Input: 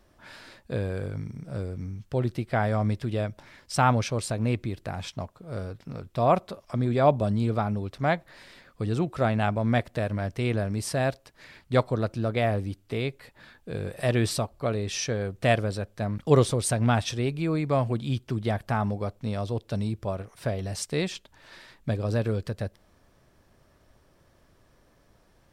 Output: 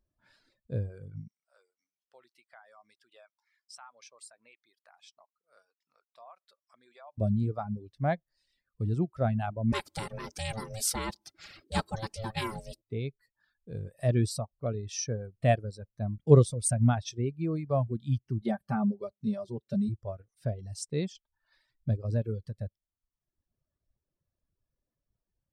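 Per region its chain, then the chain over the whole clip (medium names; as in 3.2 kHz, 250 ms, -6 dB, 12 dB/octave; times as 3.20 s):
1.28–7.18 s: Chebyshev high-pass 1.1 kHz + compression 3:1, threshold -37 dBFS
9.72–12.82 s: comb 4.1 ms, depth 97% + ring modulator 330 Hz + spectrum-flattening compressor 2:1
18.41–19.89 s: high-pass 58 Hz + comb 5.1 ms, depth 80%
whole clip: reverb removal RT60 1.1 s; tone controls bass +3 dB, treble +7 dB; spectral contrast expander 1.5:1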